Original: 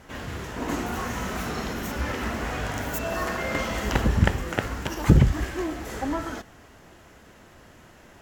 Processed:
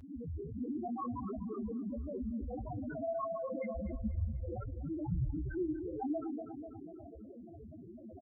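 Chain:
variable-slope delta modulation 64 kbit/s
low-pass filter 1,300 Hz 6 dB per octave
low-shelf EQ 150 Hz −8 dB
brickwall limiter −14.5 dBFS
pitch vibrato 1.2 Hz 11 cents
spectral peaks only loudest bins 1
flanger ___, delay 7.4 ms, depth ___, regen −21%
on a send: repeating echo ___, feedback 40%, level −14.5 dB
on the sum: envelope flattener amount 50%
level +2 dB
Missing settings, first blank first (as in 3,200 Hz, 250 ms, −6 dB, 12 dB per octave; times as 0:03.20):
1.5 Hz, 6.7 ms, 245 ms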